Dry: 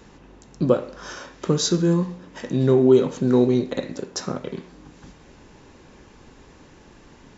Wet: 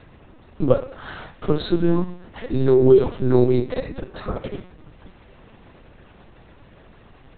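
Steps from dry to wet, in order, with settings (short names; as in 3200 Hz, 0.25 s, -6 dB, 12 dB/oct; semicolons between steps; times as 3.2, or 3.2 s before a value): HPF 77 Hz 6 dB/oct; LPC vocoder at 8 kHz pitch kept; gain +2 dB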